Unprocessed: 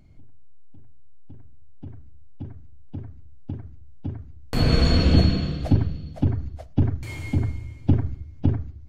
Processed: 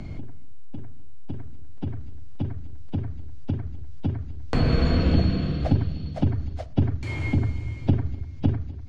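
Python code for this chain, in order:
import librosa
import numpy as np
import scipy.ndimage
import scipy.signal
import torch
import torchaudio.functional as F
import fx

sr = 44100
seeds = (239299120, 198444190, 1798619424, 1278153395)

y = scipy.signal.sosfilt(scipy.signal.butter(2, 5500.0, 'lowpass', fs=sr, output='sos'), x)
y = y + 10.0 ** (-24.0 / 20.0) * np.pad(y, (int(248 * sr / 1000.0), 0))[:len(y)]
y = fx.band_squash(y, sr, depth_pct=70)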